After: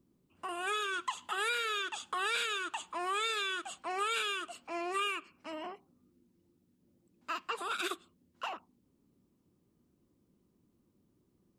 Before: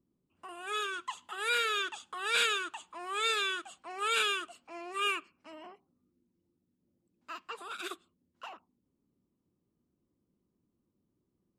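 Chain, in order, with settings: compression 8:1, threshold -38 dBFS, peak gain reduction 14 dB; trim +7 dB

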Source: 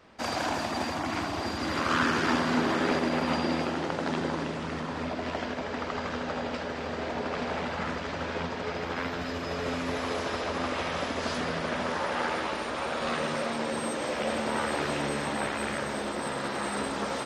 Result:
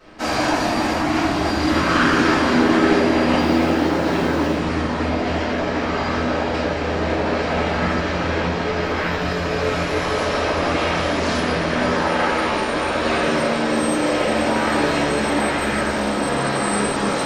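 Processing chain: in parallel at -1 dB: peak limiter -22.5 dBFS, peak gain reduction 8.5 dB; 3.38–4.56 s: on the sum: short-mantissa float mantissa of 4-bit; simulated room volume 54 m³, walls mixed, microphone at 2 m; trim -4 dB

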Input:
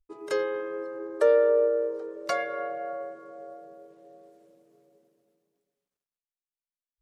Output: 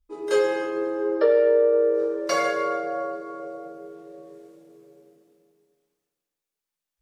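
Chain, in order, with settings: 0.99–1.69 s: brick-wall FIR low-pass 5.5 kHz; two-slope reverb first 0.87 s, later 2.4 s, DRR -7.5 dB; compression 3:1, threshold -17 dBFS, peak gain reduction 7 dB

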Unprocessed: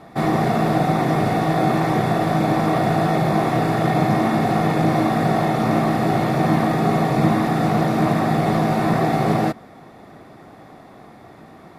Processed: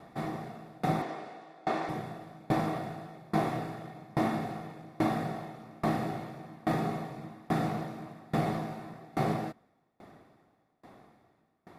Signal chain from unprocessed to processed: 1.02–1.89 s: band-pass 350–6800 Hz; sawtooth tremolo in dB decaying 1.2 Hz, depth 29 dB; trim -7 dB

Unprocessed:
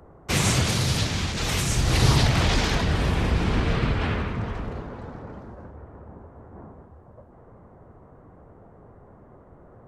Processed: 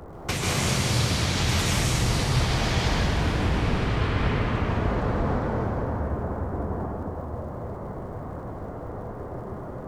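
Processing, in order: compression 12:1, threshold -34 dBFS, peak gain reduction 20.5 dB; crackle 85 per s -58 dBFS; plate-style reverb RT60 2.9 s, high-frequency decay 0.7×, pre-delay 120 ms, DRR -5 dB; trim +8 dB

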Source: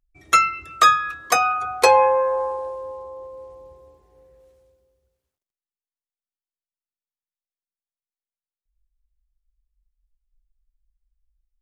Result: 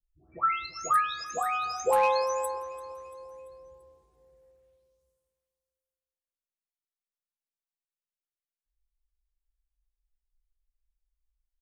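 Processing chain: delay that grows with frequency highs late, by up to 608 ms; overload inside the chain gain 8 dB; feedback delay 340 ms, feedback 52%, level -19.5 dB; trim -8.5 dB

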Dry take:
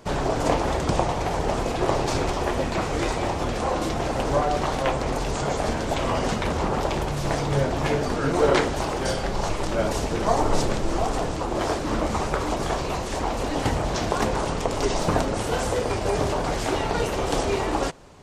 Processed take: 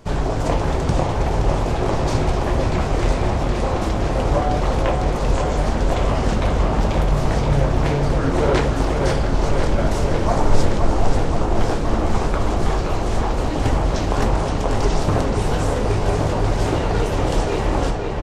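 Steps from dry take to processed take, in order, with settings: bass shelf 140 Hz +11 dB; doubling 19 ms -12 dB; on a send: filtered feedback delay 522 ms, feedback 78%, low-pass 4.8 kHz, level -5 dB; on the sum: loudspeaker Doppler distortion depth 0.27 ms; trim -1 dB

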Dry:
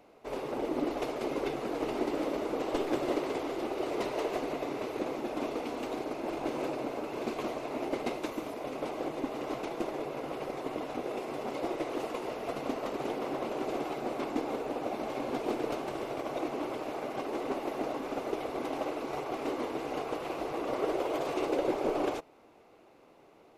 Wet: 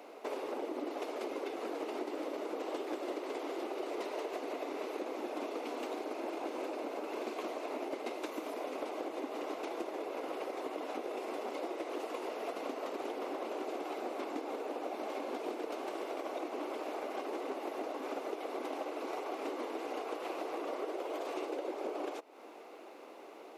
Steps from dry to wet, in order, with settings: high-pass 280 Hz 24 dB/octave; compression, threshold -45 dBFS, peak gain reduction 18 dB; trim +8 dB

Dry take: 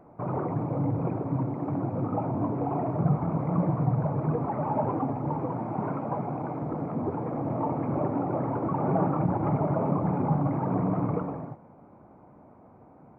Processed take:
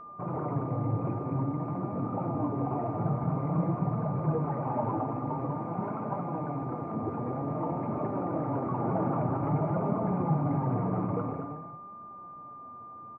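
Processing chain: loudspeakers at several distances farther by 52 m -12 dB, 76 m -6 dB; flange 0.5 Hz, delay 4.4 ms, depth 5 ms, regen +55%; whistle 1.2 kHz -43 dBFS

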